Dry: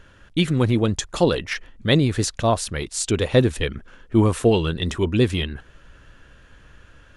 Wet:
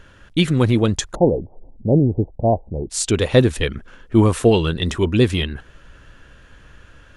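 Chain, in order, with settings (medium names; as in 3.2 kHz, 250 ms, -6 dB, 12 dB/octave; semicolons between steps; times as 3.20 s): 1.15–2.90 s: steep low-pass 850 Hz 72 dB/octave; trim +3 dB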